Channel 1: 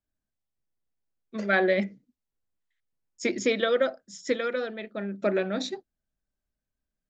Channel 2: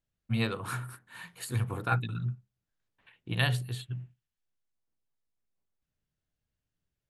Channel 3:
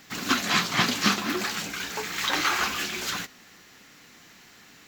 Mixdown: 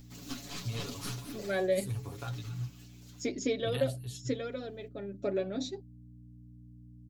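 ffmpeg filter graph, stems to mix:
-filter_complex "[0:a]aeval=exprs='val(0)+0.00562*(sin(2*PI*60*n/s)+sin(2*PI*2*60*n/s)/2+sin(2*PI*3*60*n/s)/3+sin(2*PI*4*60*n/s)/4+sin(2*PI*5*60*n/s)/5)':c=same,volume=0.596,asplit=2[s0][s1];[1:a]equalizer=f=190:w=0.94:g=-8.5,acompressor=threshold=0.0355:ratio=6,adelay=350,volume=0.668[s2];[2:a]aeval=exprs='(tanh(6.31*val(0)+0.55)-tanh(0.55))/6.31':c=same,acompressor=mode=upward:threshold=0.00562:ratio=2.5,volume=0.237,afade=t=out:st=1.83:d=0.7:silence=0.266073[s3];[s1]apad=whole_len=215047[s4];[s3][s4]sidechaincompress=threshold=0.02:ratio=8:attack=39:release=818[s5];[s0][s2][s5]amix=inputs=3:normalize=0,equalizer=f=1600:w=0.74:g=-13.5,aecho=1:1:7.1:0.74"

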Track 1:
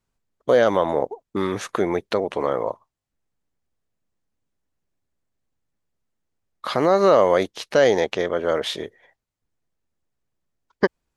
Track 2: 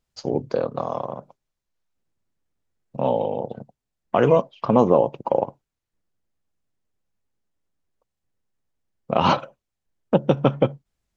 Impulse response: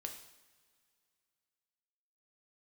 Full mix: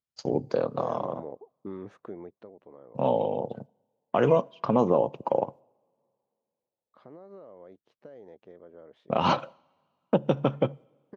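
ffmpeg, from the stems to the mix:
-filter_complex "[0:a]acompressor=threshold=0.126:ratio=6,bandpass=f=220:t=q:w=0.53:csg=0,adelay=300,volume=0.251,afade=t=out:st=1.9:d=0.62:silence=0.298538[s0];[1:a]agate=range=0.2:threshold=0.0112:ratio=16:detection=peak,highpass=88,volume=0.668,asplit=2[s1][s2];[s2]volume=0.126[s3];[2:a]atrim=start_sample=2205[s4];[s3][s4]afir=irnorm=-1:irlink=0[s5];[s0][s1][s5]amix=inputs=3:normalize=0,alimiter=limit=0.335:level=0:latency=1:release=337"

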